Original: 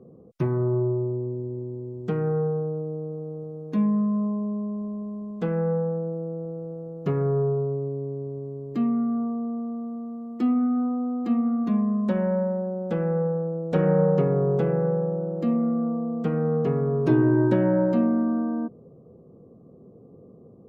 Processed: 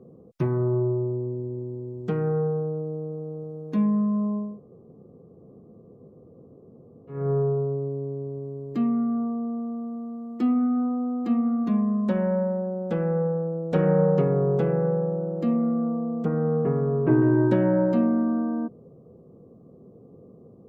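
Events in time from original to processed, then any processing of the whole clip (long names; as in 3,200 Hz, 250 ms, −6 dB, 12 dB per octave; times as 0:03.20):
0:04.49–0:07.19: fill with room tone, crossfade 0.24 s
0:16.24–0:17.20: low-pass filter 1,700 Hz → 2,100 Hz 24 dB per octave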